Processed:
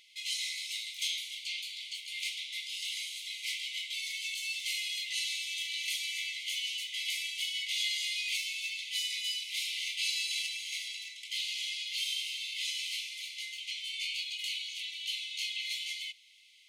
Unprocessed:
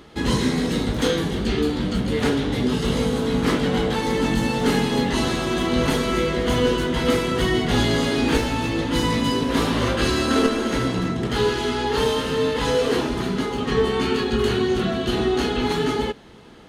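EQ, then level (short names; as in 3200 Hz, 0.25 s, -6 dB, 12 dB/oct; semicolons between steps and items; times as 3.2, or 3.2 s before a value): brick-wall FIR high-pass 2000 Hz; -4.0 dB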